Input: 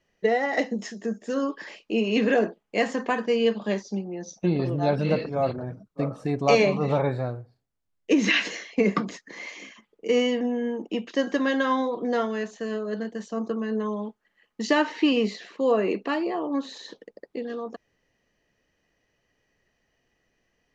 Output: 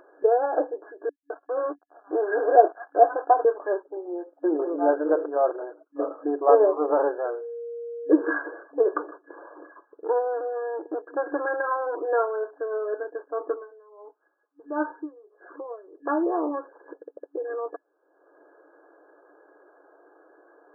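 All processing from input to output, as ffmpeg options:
ffmpeg -i in.wav -filter_complex "[0:a]asettb=1/sr,asplit=3[link_01][link_02][link_03];[link_01]atrim=end=1.094[link_04];[link_02]atrim=start=1.09:end=3.45,asetpts=PTS-STARTPTS,afade=type=in:duration=0.004:curve=qsin,afade=type=out:start_time=2.356:duration=0.004:curve=qsin,acrossover=split=1400[link_05][link_06];[link_05]adelay=210[link_07];[link_07][link_06]amix=inputs=2:normalize=0,atrim=end_sample=104076,aeval=exprs='sgn(val(0))*max(abs(val(0))-0.0126,0)':channel_layout=same,equalizer=frequency=720:width_type=o:width=0.25:gain=14[link_08];[link_03]atrim=start=3.446[link_09];[link_04][link_08]acrossfade=duration=0.004:curve1=hsin:curve2=qsin[link_10];[link_10][link_09]acrossfade=duration=0.004:curve1=qsin:curve2=hsin,asettb=1/sr,asplit=3[link_11][link_12][link_13];[link_11]atrim=end=7.254[link_14];[link_12]atrim=start=7.25:end=8.33,asetpts=PTS-STARTPTS,afade=type=in:duration=0.004:curve=qsin,afade=type=out:start_time=1.076:duration=0.004:curve=qsin,equalizer=frequency=4000:width_type=o:width=1.7:gain=13,aeval=exprs='val(0)+0.0178*sin(2*PI*470*n/s)':channel_layout=same[link_15];[link_13]atrim=start=8.326[link_16];[link_14][link_15]acrossfade=duration=0.004:curve1=hsin:curve2=qsin[link_17];[link_17][link_16]acrossfade=duration=0.004:curve1=qsin:curve2=hsin,asettb=1/sr,asplit=3[link_18][link_19][link_20];[link_18]atrim=end=8.964[link_21];[link_19]atrim=start=8.96:end=11.97,asetpts=PTS-STARTPTS,afade=type=in:duration=0.004:curve=qsin,afade=type=out:start_time=3.006:duration=0.004:curve=qsin,aecho=1:1:154:0.0668,atrim=end_sample=132741,aeval=exprs='clip(val(0),-1,0.02)':channel_layout=same[link_22];[link_20]atrim=start=11.966[link_23];[link_21][link_22]acrossfade=duration=0.004:curve1=hsin:curve2=qsin[link_24];[link_24][link_23]acrossfade=duration=0.004:curve1=qsin:curve2=hsin,asettb=1/sr,asplit=3[link_25][link_26][link_27];[link_25]atrim=end=13.544[link_28];[link_26]atrim=start=13.54:end=16.07,asetpts=PTS-STARTPTS,afade=type=in:duration=0.004:curve=qsin,afade=type=out:start_time=2.526:duration=0.004:curve=qsin,flanger=delay=4.7:depth=3:regen=-49:speed=1.1:shape=triangular,aeval=exprs='val(0)*pow(10,-25*(0.5-0.5*cos(2*PI*1.5*n/s))/20)':channel_layout=same[link_29];[link_27]atrim=start=16.066[link_30];[link_28][link_29]acrossfade=duration=0.004:curve1=hsin:curve2=qsin[link_31];[link_31][link_30]acrossfade=duration=0.004:curve1=qsin:curve2=hsin,afftfilt=real='re*between(b*sr/4096,290,1700)':imag='im*between(b*sr/4096,290,1700)':win_size=4096:overlap=0.75,acompressor=mode=upward:threshold=-42dB:ratio=2.5,volume=3dB" out.wav

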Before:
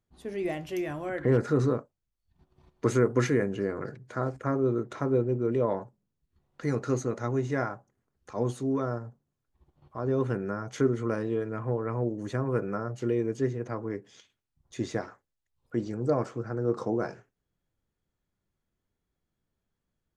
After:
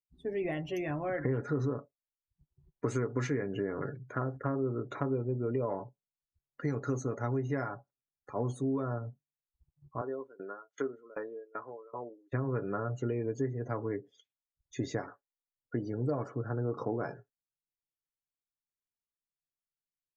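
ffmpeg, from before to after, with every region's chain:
ffmpeg -i in.wav -filter_complex "[0:a]asettb=1/sr,asplit=3[link_01][link_02][link_03];[link_01]atrim=end=10.014[link_04];[link_02]atrim=start=10.01:end=12.33,asetpts=PTS-STARTPTS,afade=type=in:duration=0.004:curve=qsin,afade=type=out:start_time=2.316:duration=0.004:curve=qsin,highpass=450,lowpass=7700,aeval=exprs='val(0)*pow(10,-22*if(lt(mod(2.6*n/s,1),2*abs(2.6)/1000),1-mod(2.6*n/s,1)/(2*abs(2.6)/1000),(mod(2.6*n/s,1)-2*abs(2.6)/1000)/(1-2*abs(2.6)/1000))/20)':channel_layout=same[link_05];[link_03]atrim=start=12.326[link_06];[link_04][link_05]acrossfade=duration=0.004:curve1=hsin:curve2=qsin[link_07];[link_07][link_06]acrossfade=duration=0.004:curve1=qsin:curve2=hsin,afftdn=noise_reduction=28:noise_floor=-48,aecho=1:1:7.1:0.42,acompressor=threshold=-29dB:ratio=5" out.wav

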